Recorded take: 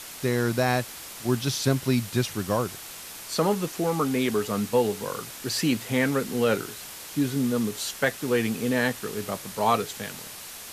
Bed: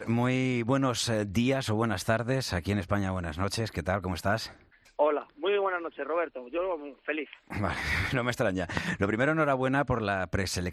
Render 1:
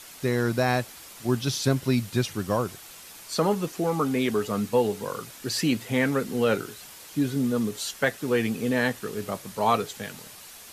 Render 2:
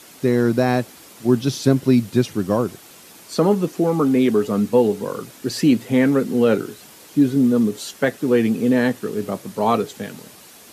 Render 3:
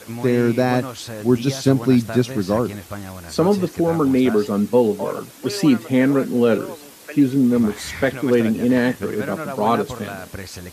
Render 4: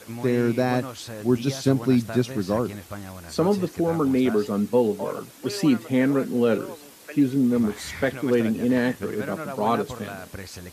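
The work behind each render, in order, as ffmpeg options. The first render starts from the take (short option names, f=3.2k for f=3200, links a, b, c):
-af "afftdn=nr=6:nf=-41"
-af "highpass=67,equalizer=f=280:w=0.59:g=10"
-filter_complex "[1:a]volume=-3.5dB[a];[0:a][a]amix=inputs=2:normalize=0"
-af "volume=-4.5dB"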